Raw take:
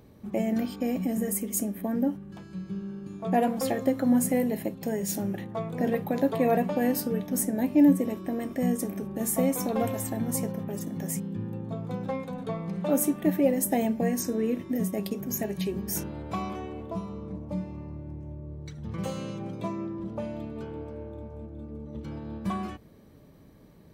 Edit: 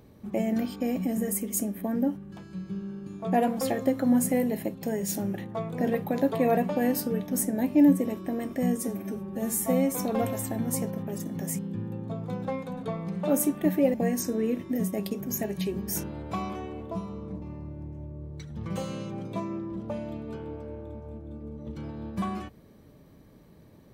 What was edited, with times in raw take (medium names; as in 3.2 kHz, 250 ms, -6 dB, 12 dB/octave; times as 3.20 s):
8.77–9.55 s: stretch 1.5×
13.55–13.94 s: delete
17.42–17.70 s: delete